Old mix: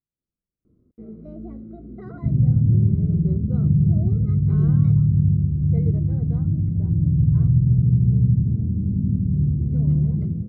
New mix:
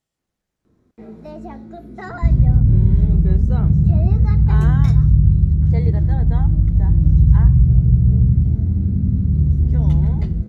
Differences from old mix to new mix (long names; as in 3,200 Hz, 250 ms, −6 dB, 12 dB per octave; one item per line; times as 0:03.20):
speech +10.0 dB
second sound: remove high-pass filter 100 Hz 24 dB per octave
master: remove moving average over 51 samples